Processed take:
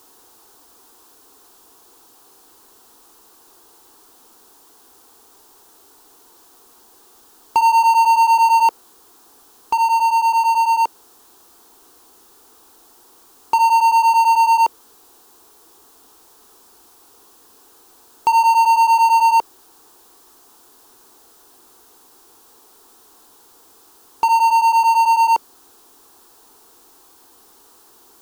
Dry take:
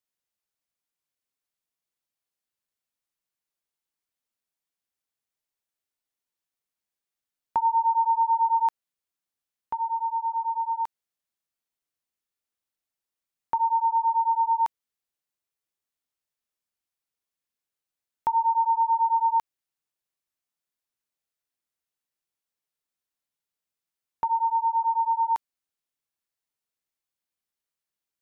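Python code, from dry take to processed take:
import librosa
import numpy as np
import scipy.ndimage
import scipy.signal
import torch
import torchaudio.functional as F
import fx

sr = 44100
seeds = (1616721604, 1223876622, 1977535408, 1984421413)

y = fx.peak_eq(x, sr, hz=520.0, db=13.0, octaves=2.2)
y = fx.fixed_phaser(y, sr, hz=580.0, stages=6)
y = fx.power_curve(y, sr, exponent=0.5)
y = F.gain(torch.from_numpy(y), -1.5).numpy()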